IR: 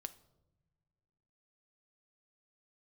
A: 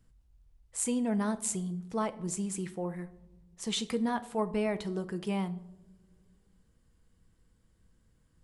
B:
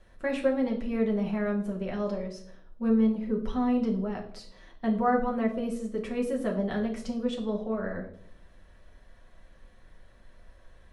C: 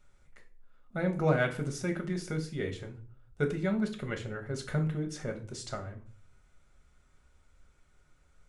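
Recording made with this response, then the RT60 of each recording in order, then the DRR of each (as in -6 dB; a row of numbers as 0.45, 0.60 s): A; not exponential, 0.65 s, 0.40 s; 11.0, -1.0, 3.0 dB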